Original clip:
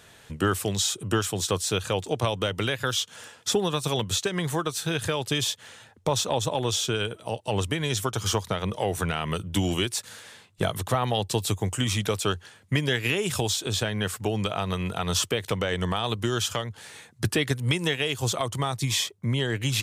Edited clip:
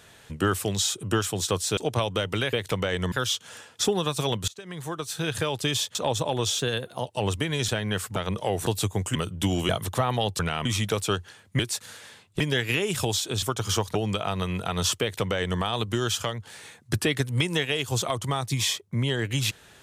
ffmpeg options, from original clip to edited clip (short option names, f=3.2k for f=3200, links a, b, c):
-filter_complex "[0:a]asplit=19[a][b][c][d][e][f][g][h][i][j][k][l][m][n][o][p][q][r][s];[a]atrim=end=1.772[t];[b]atrim=start=2.028:end=2.792[u];[c]atrim=start=15.318:end=15.912[v];[d]atrim=start=2.788:end=4.15,asetpts=PTS-STARTPTS,afade=t=out:st=1.358:d=0.004:c=hsin:silence=0.0668344[w];[e]atrim=start=4.15:end=5.622,asetpts=PTS-STARTPTS,afade=t=in:d=0.88:silence=0.0668344[x];[f]atrim=start=6.208:end=6.854[y];[g]atrim=start=6.85:end=7.37,asetpts=PTS-STARTPTS,asetrate=48510,aresample=44100,atrim=end_sample=20847,asetpts=PTS-STARTPTS[z];[h]atrim=start=7.366:end=7.992[aa];[i]atrim=start=13.778:end=14.262[ab];[j]atrim=start=8.518:end=9.022[ac];[k]atrim=start=11.328:end=11.822[ad];[l]atrim=start=9.278:end=9.822[ae];[m]atrim=start=10.628:end=11.332[af];[n]atrim=start=9.018:end=9.282[ag];[o]atrim=start=11.818:end=12.762[ah];[p]atrim=start=9.818:end=10.632[ai];[q]atrim=start=12.758:end=13.782[aj];[r]atrim=start=7.988:end=8.522[ak];[s]atrim=start=14.258[al];[t][u]acrossfade=d=0.004:c1=hsin:c2=hsin[am];[am][v]acrossfade=d=0.004:c1=hsin:c2=hsin[an];[w][x]concat=n=2:v=0:a=1[ao];[an][ao]acrossfade=d=0.004:c1=hsin:c2=hsin[ap];[ap][y]acrossfade=d=0.004:c1=hsin:c2=hsin[aq];[aq][z]acrossfade=d=0.004:c1=hsin:c2=hsin[ar];[ar][aa]acrossfade=d=0.004:c1=hsin:c2=hsin[as];[as][ab]acrossfade=d=0.004:c1=hsin:c2=hsin[at];[at][ac]acrossfade=d=0.004:c1=hsin:c2=hsin[au];[au][ad]acrossfade=d=0.004:c1=hsin:c2=hsin[av];[av][ae]acrossfade=d=0.004:c1=hsin:c2=hsin[aw];[aw][af]acrossfade=d=0.004:c1=hsin:c2=hsin[ax];[ax][ag]acrossfade=d=0.004:c1=hsin:c2=hsin[ay];[ay][ah]acrossfade=d=0.004:c1=hsin:c2=hsin[az];[az][ai]acrossfade=d=0.004:c1=hsin:c2=hsin[ba];[ba][aj]acrossfade=d=0.004:c1=hsin:c2=hsin[bb];[bb][ak]acrossfade=d=0.004:c1=hsin:c2=hsin[bc];[bc][al]acrossfade=d=0.004:c1=hsin:c2=hsin"